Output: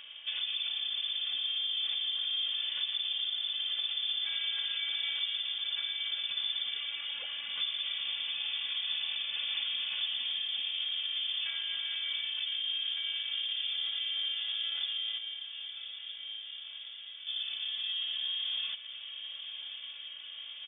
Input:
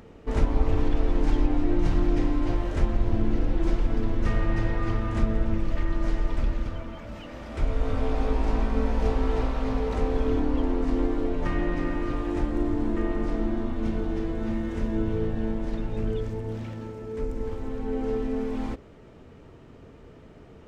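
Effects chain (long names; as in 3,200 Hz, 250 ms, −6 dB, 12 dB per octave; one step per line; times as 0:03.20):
three-way crossover with the lows and the highs turned down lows −12 dB, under 220 Hz, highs −17 dB, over 2,500 Hz
comb filter 3.4 ms, depth 72%
brickwall limiter −23.5 dBFS, peak gain reduction 9.5 dB
downward compressor 2 to 1, threshold −41 dBFS, peak gain reduction 8 dB
0:15.18–0:17.27: tuned comb filter 54 Hz, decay 1.1 s, harmonics all, mix 100%
feedback delay with all-pass diffusion 1,116 ms, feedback 72%, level −10.5 dB
voice inversion scrambler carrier 3,500 Hz
level +2 dB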